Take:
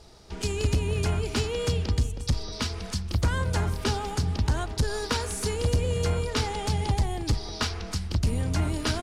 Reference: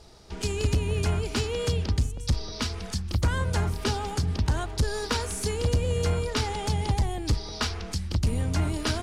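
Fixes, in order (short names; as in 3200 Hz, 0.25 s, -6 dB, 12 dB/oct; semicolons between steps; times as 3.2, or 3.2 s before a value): inverse comb 0.319 s -14.5 dB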